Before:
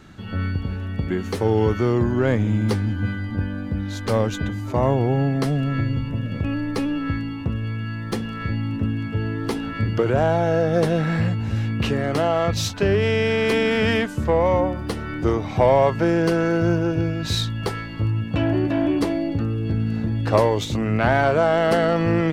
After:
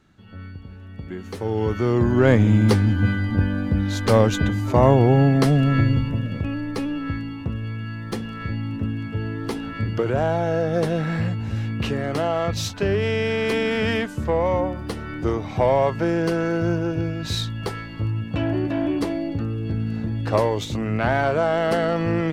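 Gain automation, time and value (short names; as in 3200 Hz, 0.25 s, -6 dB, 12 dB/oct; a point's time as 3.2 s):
0.7 s -13 dB
1.46 s -6 dB
2.29 s +4.5 dB
5.9 s +4.5 dB
6.52 s -2.5 dB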